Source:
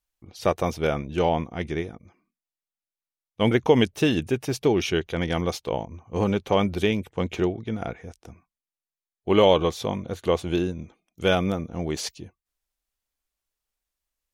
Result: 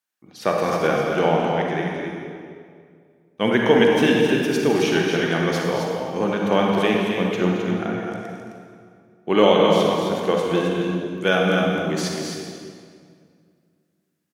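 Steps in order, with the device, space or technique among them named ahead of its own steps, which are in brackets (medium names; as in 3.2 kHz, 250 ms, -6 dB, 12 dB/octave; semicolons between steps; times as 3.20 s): stadium PA (high-pass 150 Hz 24 dB/octave; peaking EQ 1.6 kHz +7 dB 0.58 oct; loudspeakers at several distances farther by 75 m -11 dB, 90 m -6 dB; reverberation RT60 2.1 s, pre-delay 37 ms, DRR 0 dB)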